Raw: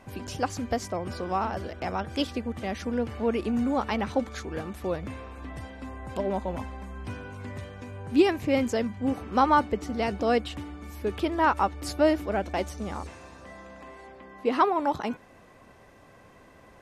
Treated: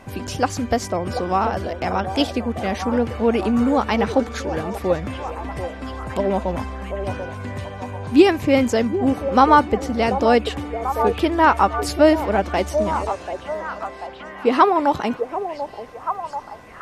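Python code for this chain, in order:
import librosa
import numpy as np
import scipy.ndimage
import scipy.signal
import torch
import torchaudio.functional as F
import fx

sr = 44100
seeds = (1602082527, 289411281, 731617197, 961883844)

y = fx.echo_stepped(x, sr, ms=738, hz=560.0, octaves=0.7, feedback_pct=70, wet_db=-6.0)
y = F.gain(torch.from_numpy(y), 8.0).numpy()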